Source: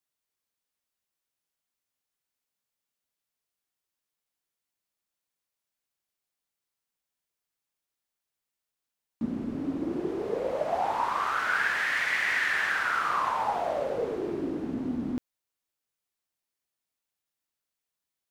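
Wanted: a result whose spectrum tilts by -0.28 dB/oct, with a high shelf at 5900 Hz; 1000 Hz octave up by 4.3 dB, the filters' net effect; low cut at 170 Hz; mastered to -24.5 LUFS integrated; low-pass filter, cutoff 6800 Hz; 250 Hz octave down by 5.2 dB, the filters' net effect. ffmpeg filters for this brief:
-af "highpass=170,lowpass=6.8k,equalizer=f=250:t=o:g=-6,equalizer=f=1k:t=o:g=5.5,highshelf=f=5.9k:g=6.5,volume=1dB"

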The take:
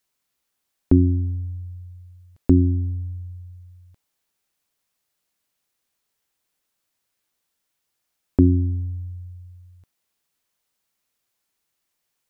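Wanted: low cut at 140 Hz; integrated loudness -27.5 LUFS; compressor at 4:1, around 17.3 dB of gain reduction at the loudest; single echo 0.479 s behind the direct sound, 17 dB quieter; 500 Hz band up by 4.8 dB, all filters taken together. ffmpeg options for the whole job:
-af "highpass=140,equalizer=f=500:t=o:g=8.5,acompressor=threshold=-31dB:ratio=4,aecho=1:1:479:0.141,volume=10.5dB"

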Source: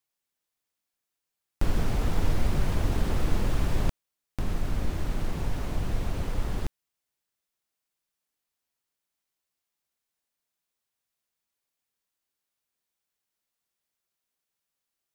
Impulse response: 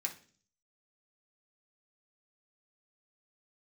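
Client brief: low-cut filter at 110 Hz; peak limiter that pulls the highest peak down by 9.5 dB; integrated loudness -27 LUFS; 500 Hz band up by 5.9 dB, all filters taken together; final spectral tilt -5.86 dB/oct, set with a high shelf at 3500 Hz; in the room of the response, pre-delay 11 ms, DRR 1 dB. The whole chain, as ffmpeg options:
-filter_complex "[0:a]highpass=110,equalizer=f=500:t=o:g=7.5,highshelf=f=3.5k:g=-3.5,alimiter=level_in=0.5dB:limit=-24dB:level=0:latency=1,volume=-0.5dB,asplit=2[a][b];[1:a]atrim=start_sample=2205,adelay=11[c];[b][c]afir=irnorm=-1:irlink=0,volume=-2dB[d];[a][d]amix=inputs=2:normalize=0,volume=6.5dB"

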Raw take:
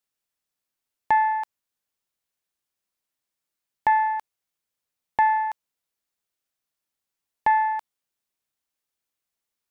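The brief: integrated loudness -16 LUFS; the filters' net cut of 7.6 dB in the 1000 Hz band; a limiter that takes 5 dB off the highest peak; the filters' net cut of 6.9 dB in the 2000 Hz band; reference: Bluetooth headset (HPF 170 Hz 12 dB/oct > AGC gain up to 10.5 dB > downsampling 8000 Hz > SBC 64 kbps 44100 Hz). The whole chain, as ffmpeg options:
-af "equalizer=f=1k:t=o:g=-8,equalizer=f=2k:t=o:g=-5.5,alimiter=limit=-22dB:level=0:latency=1,highpass=170,dynaudnorm=m=10.5dB,aresample=8000,aresample=44100,volume=16.5dB" -ar 44100 -c:a sbc -b:a 64k

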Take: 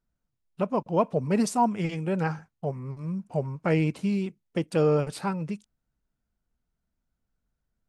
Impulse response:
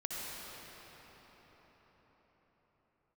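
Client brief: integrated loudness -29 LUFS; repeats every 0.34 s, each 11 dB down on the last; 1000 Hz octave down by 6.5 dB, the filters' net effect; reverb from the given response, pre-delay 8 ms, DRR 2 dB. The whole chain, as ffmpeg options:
-filter_complex "[0:a]equalizer=f=1k:t=o:g=-8.5,aecho=1:1:340|680|1020:0.282|0.0789|0.0221,asplit=2[a][b];[1:a]atrim=start_sample=2205,adelay=8[c];[b][c]afir=irnorm=-1:irlink=0,volume=-5dB[d];[a][d]amix=inputs=2:normalize=0,volume=-1.5dB"

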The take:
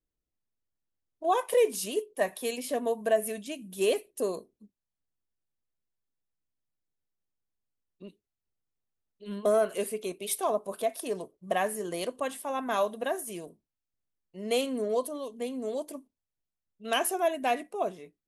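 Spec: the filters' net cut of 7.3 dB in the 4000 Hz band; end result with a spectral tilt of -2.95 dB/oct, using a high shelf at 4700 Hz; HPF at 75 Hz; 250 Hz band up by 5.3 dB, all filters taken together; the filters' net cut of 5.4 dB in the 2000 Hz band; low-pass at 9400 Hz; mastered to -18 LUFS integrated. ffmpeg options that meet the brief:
-af "highpass=75,lowpass=9.4k,equalizer=f=250:t=o:g=6.5,equalizer=f=2k:t=o:g=-5,equalizer=f=4k:t=o:g=-6,highshelf=f=4.7k:g=-4.5,volume=12dB"

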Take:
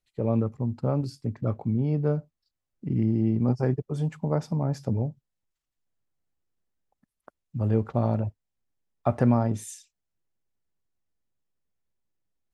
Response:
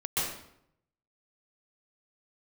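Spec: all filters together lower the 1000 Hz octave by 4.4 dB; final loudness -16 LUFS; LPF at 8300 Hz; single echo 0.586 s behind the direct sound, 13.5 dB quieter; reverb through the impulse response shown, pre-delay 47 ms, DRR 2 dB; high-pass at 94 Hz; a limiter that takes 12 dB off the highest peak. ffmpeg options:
-filter_complex "[0:a]highpass=94,lowpass=8.3k,equalizer=f=1k:t=o:g=-6.5,alimiter=limit=-22.5dB:level=0:latency=1,aecho=1:1:586:0.211,asplit=2[a][b];[1:a]atrim=start_sample=2205,adelay=47[c];[b][c]afir=irnorm=-1:irlink=0,volume=-10.5dB[d];[a][d]amix=inputs=2:normalize=0,volume=14.5dB"

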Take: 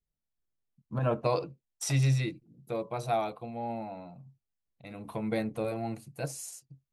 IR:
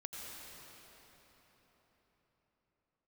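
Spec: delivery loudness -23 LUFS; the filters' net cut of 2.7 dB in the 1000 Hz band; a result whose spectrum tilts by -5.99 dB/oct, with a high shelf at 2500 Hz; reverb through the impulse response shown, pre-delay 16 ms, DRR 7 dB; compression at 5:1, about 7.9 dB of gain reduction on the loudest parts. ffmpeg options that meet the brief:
-filter_complex "[0:a]equalizer=f=1k:t=o:g=-3.5,highshelf=f=2.5k:g=-3.5,acompressor=threshold=-31dB:ratio=5,asplit=2[a][b];[1:a]atrim=start_sample=2205,adelay=16[c];[b][c]afir=irnorm=-1:irlink=0,volume=-6dB[d];[a][d]amix=inputs=2:normalize=0,volume=14.5dB"

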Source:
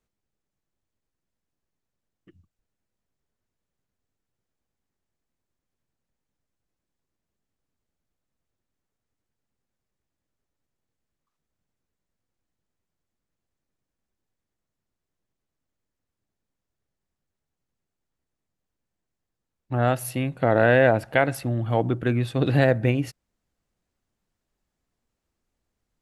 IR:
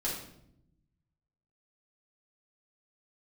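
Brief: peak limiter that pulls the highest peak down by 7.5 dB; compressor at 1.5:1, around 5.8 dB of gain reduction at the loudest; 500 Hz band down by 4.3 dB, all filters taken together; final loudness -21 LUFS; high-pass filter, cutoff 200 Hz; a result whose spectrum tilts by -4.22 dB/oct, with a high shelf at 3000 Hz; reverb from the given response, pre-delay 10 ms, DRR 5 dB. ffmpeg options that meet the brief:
-filter_complex "[0:a]highpass=200,equalizer=f=500:t=o:g=-5,highshelf=f=3k:g=-5,acompressor=threshold=-32dB:ratio=1.5,alimiter=limit=-19.5dB:level=0:latency=1,asplit=2[a][b];[1:a]atrim=start_sample=2205,adelay=10[c];[b][c]afir=irnorm=-1:irlink=0,volume=-9.5dB[d];[a][d]amix=inputs=2:normalize=0,volume=10.5dB"

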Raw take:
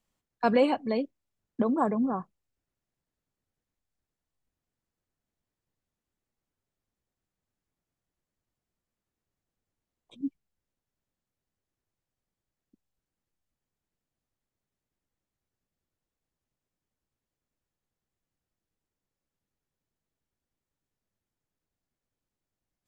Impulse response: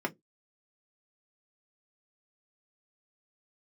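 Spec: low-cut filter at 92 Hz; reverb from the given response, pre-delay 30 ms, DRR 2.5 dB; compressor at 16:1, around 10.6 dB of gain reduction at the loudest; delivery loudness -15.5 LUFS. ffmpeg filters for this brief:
-filter_complex "[0:a]highpass=92,acompressor=threshold=-28dB:ratio=16,asplit=2[a][b];[1:a]atrim=start_sample=2205,adelay=30[c];[b][c]afir=irnorm=-1:irlink=0,volume=-9dB[d];[a][d]amix=inputs=2:normalize=0,volume=16dB"

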